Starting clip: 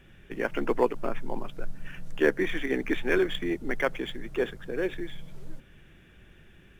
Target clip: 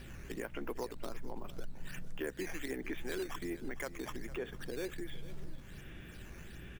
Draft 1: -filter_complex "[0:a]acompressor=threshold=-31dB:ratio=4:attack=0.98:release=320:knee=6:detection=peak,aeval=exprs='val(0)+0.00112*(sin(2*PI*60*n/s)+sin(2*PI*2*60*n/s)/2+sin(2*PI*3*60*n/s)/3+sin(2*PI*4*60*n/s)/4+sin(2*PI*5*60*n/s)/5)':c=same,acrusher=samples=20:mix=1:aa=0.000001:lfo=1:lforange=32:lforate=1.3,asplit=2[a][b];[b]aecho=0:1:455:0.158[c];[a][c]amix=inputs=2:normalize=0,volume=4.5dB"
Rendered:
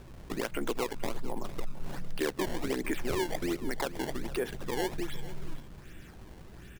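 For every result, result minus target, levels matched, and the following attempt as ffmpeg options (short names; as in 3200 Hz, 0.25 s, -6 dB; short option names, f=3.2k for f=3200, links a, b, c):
compressor: peak gain reduction -8 dB; decimation with a swept rate: distortion +7 dB
-filter_complex "[0:a]acompressor=threshold=-41.5dB:ratio=4:attack=0.98:release=320:knee=6:detection=peak,aeval=exprs='val(0)+0.00112*(sin(2*PI*60*n/s)+sin(2*PI*2*60*n/s)/2+sin(2*PI*3*60*n/s)/3+sin(2*PI*4*60*n/s)/4+sin(2*PI*5*60*n/s)/5)':c=same,acrusher=samples=20:mix=1:aa=0.000001:lfo=1:lforange=32:lforate=1.3,asplit=2[a][b];[b]aecho=0:1:455:0.158[c];[a][c]amix=inputs=2:normalize=0,volume=4.5dB"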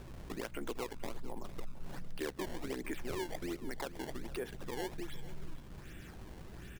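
decimation with a swept rate: distortion +6 dB
-filter_complex "[0:a]acompressor=threshold=-41.5dB:ratio=4:attack=0.98:release=320:knee=6:detection=peak,aeval=exprs='val(0)+0.00112*(sin(2*PI*60*n/s)+sin(2*PI*2*60*n/s)/2+sin(2*PI*3*60*n/s)/3+sin(2*PI*4*60*n/s)/4+sin(2*PI*5*60*n/s)/5)':c=same,acrusher=samples=6:mix=1:aa=0.000001:lfo=1:lforange=9.6:lforate=1.3,asplit=2[a][b];[b]aecho=0:1:455:0.158[c];[a][c]amix=inputs=2:normalize=0,volume=4.5dB"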